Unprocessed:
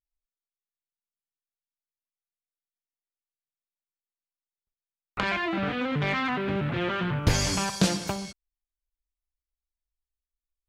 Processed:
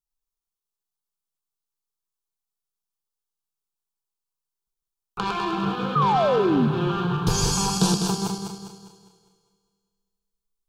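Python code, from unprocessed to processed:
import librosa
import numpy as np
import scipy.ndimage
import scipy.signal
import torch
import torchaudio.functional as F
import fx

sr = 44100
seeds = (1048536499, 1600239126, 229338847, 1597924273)

y = fx.reverse_delay_fb(x, sr, ms=101, feedback_pct=65, wet_db=-3)
y = fx.fixed_phaser(y, sr, hz=400.0, stages=8)
y = fx.spec_paint(y, sr, seeds[0], shape='fall', start_s=5.95, length_s=0.73, low_hz=210.0, high_hz=1300.0, level_db=-24.0)
y = fx.echo_heads(y, sr, ms=76, heads='first and second', feedback_pct=68, wet_db=-22.5)
y = y * 10.0 ** (3.5 / 20.0)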